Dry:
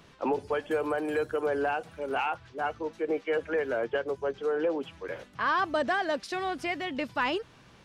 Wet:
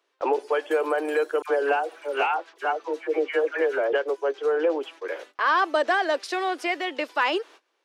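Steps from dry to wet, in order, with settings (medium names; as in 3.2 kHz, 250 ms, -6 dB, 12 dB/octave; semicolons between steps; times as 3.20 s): steep high-pass 320 Hz 48 dB/octave; gate -51 dBFS, range -21 dB; 1.42–3.93 s: phase dispersion lows, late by 81 ms, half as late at 1.1 kHz; trim +5.5 dB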